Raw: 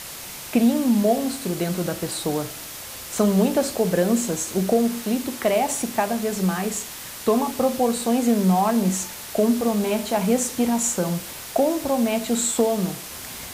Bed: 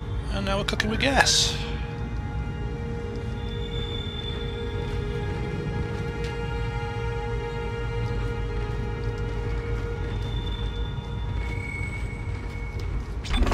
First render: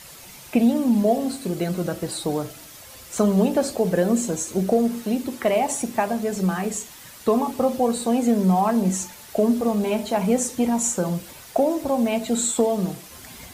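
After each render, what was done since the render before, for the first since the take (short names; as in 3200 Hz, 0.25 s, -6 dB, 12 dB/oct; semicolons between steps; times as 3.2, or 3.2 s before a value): denoiser 9 dB, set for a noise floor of -36 dBFS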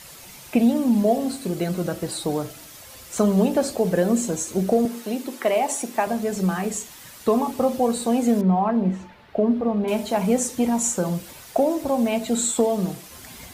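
4.85–6.07 HPF 270 Hz; 8.41–9.88 air absorption 390 m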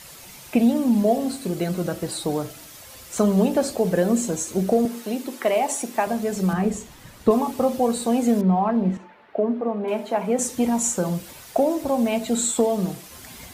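6.53–7.31 tilt -2.5 dB/oct; 8.97–10.39 three-band isolator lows -20 dB, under 220 Hz, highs -12 dB, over 2700 Hz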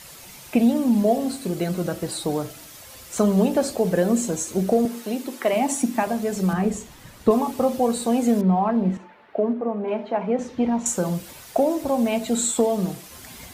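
5.53–6.03 resonant low shelf 340 Hz +6 dB, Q 3; 9.53–10.86 air absorption 250 m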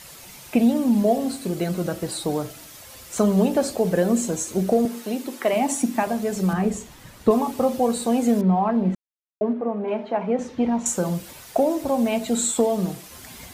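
8.95–9.41 mute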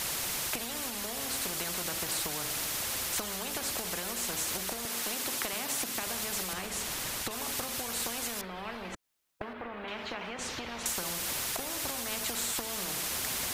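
compressor, threshold -27 dBFS, peak gain reduction 14.5 dB; spectral compressor 4:1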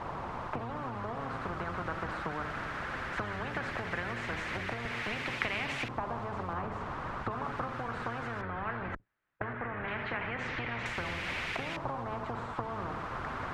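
octaver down 1 oct, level +2 dB; LFO low-pass saw up 0.17 Hz 1000–2400 Hz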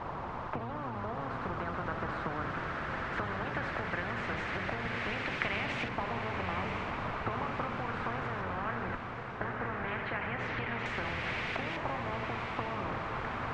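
air absorption 80 m; diffused feedback echo 1.026 s, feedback 61%, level -6 dB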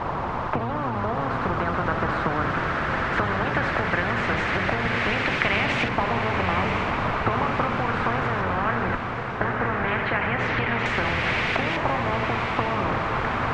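gain +11.5 dB; limiter -3 dBFS, peak gain reduction 2.5 dB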